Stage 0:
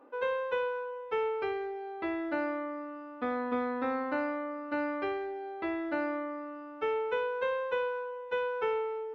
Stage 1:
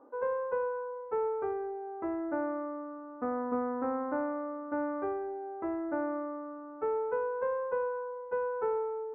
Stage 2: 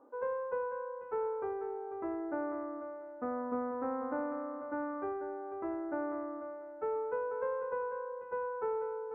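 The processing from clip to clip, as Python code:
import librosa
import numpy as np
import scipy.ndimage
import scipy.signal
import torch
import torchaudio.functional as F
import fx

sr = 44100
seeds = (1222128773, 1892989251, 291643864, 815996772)

y1 = scipy.signal.sosfilt(scipy.signal.butter(4, 1300.0, 'lowpass', fs=sr, output='sos'), x)
y2 = fx.echo_feedback(y1, sr, ms=492, feedback_pct=20, wet_db=-10.5)
y2 = F.gain(torch.from_numpy(y2), -3.5).numpy()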